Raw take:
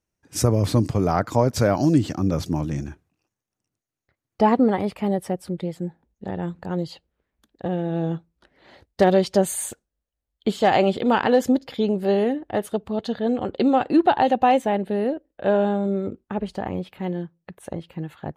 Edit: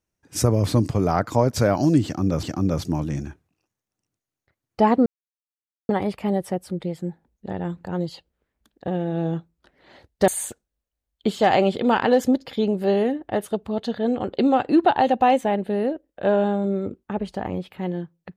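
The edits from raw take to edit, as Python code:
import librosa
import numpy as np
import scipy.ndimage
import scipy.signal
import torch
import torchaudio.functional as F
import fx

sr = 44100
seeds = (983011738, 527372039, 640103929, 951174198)

y = fx.edit(x, sr, fx.repeat(start_s=2.04, length_s=0.39, count=2),
    fx.insert_silence(at_s=4.67, length_s=0.83),
    fx.cut(start_s=9.06, length_s=0.43), tone=tone)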